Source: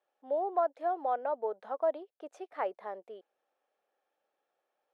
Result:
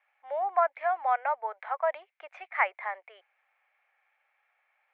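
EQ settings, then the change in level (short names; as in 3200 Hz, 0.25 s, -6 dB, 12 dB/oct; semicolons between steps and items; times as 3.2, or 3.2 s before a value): HPF 790 Hz 24 dB/oct; synth low-pass 2200 Hz, resonance Q 7.4; +7.5 dB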